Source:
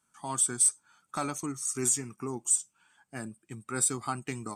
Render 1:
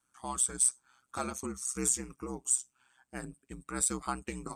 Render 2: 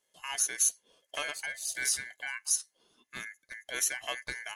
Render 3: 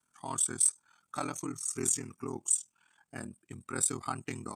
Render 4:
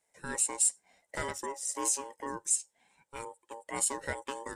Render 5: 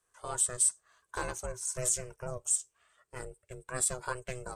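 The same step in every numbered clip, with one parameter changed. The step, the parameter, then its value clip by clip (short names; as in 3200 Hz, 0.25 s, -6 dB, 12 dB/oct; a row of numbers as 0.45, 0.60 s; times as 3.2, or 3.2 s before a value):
ring modulator, frequency: 64, 1900, 20, 690, 250 Hz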